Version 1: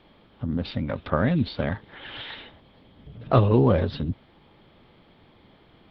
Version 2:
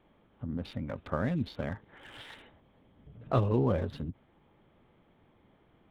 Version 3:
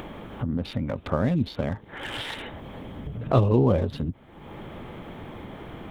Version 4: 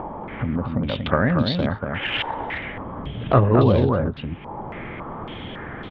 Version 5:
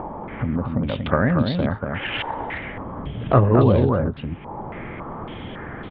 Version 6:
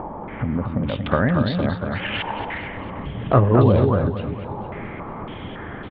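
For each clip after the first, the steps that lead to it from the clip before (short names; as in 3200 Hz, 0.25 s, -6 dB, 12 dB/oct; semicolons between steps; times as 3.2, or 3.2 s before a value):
Wiener smoothing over 9 samples; ending taper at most 540 dB/s; gain -8.5 dB
dynamic EQ 1600 Hz, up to -6 dB, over -53 dBFS, Q 1.7; upward compressor, threshold -31 dBFS; gain +7.5 dB
echo 0.236 s -4.5 dB; stepped low-pass 3.6 Hz 910–4000 Hz; gain +3 dB
air absorption 240 m; gain +1 dB
feedback echo 0.226 s, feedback 59%, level -12 dB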